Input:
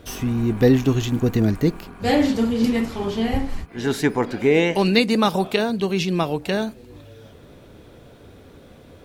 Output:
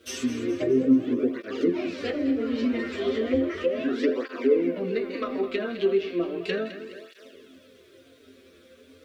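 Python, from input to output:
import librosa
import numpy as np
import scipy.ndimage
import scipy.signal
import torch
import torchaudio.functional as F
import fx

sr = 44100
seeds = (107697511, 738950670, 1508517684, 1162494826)

p1 = fx.weighting(x, sr, curve='A')
p2 = fx.echo_pitch(p1, sr, ms=105, semitones=4, count=3, db_per_echo=-6.0)
p3 = fx.low_shelf(p2, sr, hz=260.0, db=12.0)
p4 = fx.rider(p3, sr, range_db=3, speed_s=0.5)
p5 = p3 + (p4 * 10.0 ** (3.0 / 20.0))
p6 = fx.leveller(p5, sr, passes=1)
p7 = fx.resonator_bank(p6, sr, root=41, chord='fifth', decay_s=0.22)
p8 = fx.env_lowpass_down(p7, sr, base_hz=750.0, full_db=-14.5)
p9 = fx.fixed_phaser(p8, sr, hz=350.0, stages=4)
p10 = fx.echo_feedback(p9, sr, ms=210, feedback_pct=50, wet_db=-12.0)
p11 = fx.quant_dither(p10, sr, seeds[0], bits=12, dither='triangular')
p12 = p11 + fx.echo_banded(p11, sr, ms=81, feedback_pct=82, hz=2400.0, wet_db=-15.0, dry=0)
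y = fx.flanger_cancel(p12, sr, hz=0.35, depth_ms=7.5)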